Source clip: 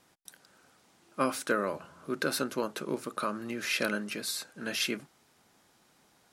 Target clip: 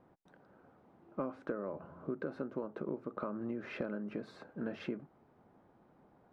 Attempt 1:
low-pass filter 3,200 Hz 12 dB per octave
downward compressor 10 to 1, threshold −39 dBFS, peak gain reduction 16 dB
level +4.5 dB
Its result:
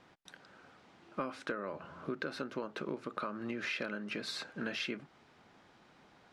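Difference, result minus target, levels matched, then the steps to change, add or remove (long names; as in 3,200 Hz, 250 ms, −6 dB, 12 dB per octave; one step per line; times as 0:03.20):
4,000 Hz band +14.5 dB
change: low-pass filter 810 Hz 12 dB per octave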